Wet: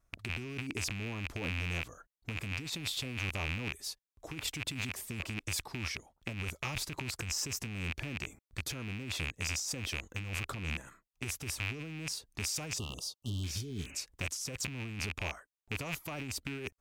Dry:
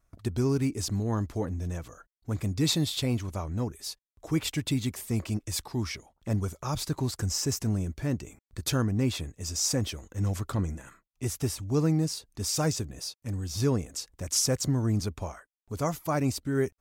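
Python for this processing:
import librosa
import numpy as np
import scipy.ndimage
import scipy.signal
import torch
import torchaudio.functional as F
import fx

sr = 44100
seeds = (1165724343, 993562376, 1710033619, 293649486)

y = fx.rattle_buzz(x, sr, strikes_db=-40.0, level_db=-19.0)
y = fx.spec_repair(y, sr, seeds[0], start_s=13.28, length_s=0.74, low_hz=440.0, high_hz=3000.0, source='before')
y = fx.over_compress(y, sr, threshold_db=-31.0, ratio=-1.0)
y = fx.brickwall_bandstop(y, sr, low_hz=1300.0, high_hz=2700.0, at=(12.78, 13.44))
y = y * librosa.db_to_amplitude(-6.5)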